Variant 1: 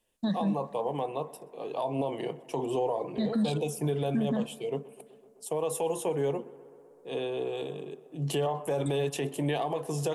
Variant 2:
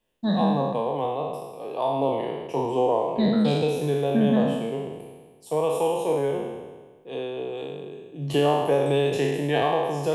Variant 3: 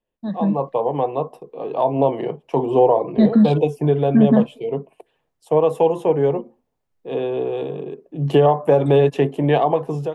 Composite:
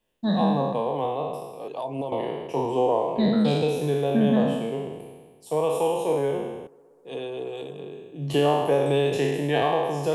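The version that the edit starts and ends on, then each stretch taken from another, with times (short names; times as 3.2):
2
1.68–2.12 from 1
6.67–7.79 from 1
not used: 3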